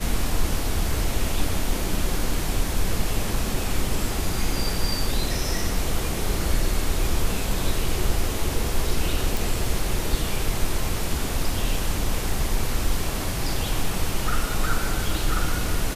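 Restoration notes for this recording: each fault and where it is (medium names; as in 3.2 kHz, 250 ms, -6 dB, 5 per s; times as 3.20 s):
9.37 s: pop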